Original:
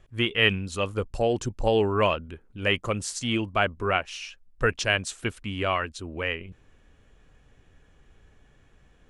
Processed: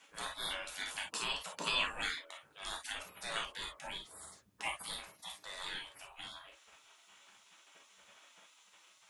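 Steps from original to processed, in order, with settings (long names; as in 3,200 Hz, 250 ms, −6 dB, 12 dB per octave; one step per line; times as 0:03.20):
gate on every frequency bin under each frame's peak −30 dB weak
reverb whose tail is shaped and stops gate 80 ms flat, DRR 0.5 dB
level +8.5 dB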